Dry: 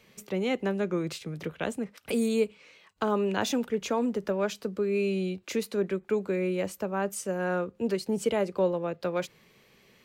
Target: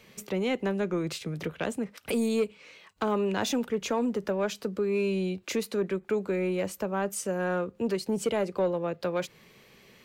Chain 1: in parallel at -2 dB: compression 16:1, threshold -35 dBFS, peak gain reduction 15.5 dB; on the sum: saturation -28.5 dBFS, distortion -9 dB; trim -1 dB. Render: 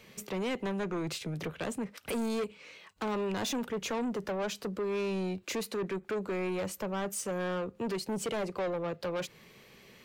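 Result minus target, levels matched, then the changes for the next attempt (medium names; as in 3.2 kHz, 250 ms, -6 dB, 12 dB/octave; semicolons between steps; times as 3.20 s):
saturation: distortion +14 dB
change: saturation -16.5 dBFS, distortion -22 dB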